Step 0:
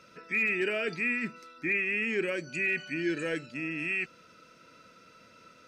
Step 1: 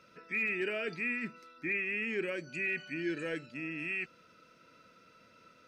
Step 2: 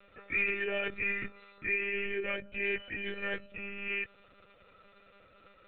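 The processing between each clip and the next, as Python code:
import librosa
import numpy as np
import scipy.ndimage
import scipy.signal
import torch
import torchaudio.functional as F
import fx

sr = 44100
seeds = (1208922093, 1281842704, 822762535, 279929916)

y1 = fx.peak_eq(x, sr, hz=7400.0, db=-4.5, octaves=1.0)
y1 = y1 * 10.0 ** (-4.5 / 20.0)
y2 = y1 + 0.61 * np.pad(y1, (int(1.7 * sr / 1000.0), 0))[:len(y1)]
y2 = fx.lpc_monotone(y2, sr, seeds[0], pitch_hz=200.0, order=16)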